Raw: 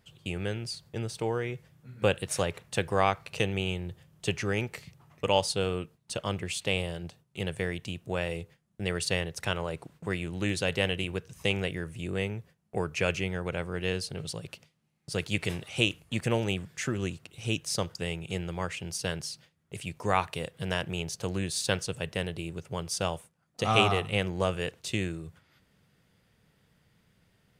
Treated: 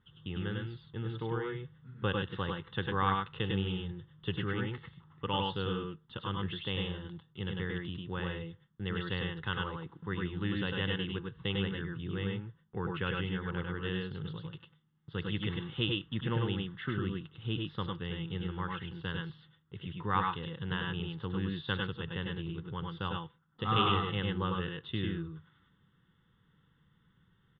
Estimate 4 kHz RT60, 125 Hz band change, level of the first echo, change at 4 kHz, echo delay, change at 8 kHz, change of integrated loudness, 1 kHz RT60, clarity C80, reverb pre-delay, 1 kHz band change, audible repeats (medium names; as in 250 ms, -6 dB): no reverb, -1.5 dB, -19.0 dB, -4.5 dB, 72 ms, under -40 dB, -4.5 dB, no reverb, no reverb, no reverb, -2.5 dB, 2